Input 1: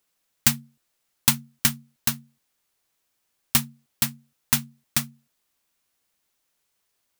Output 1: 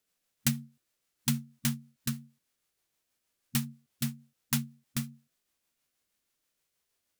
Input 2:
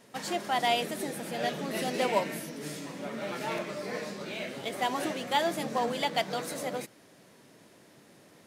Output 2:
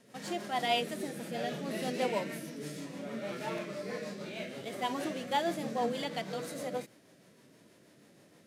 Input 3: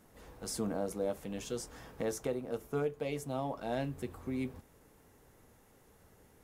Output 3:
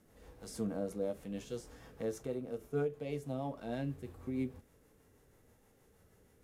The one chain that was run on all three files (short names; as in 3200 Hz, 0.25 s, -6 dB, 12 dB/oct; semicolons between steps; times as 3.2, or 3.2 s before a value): rotary speaker horn 6.3 Hz; harmonic-percussive split harmonic +9 dB; gain -7.5 dB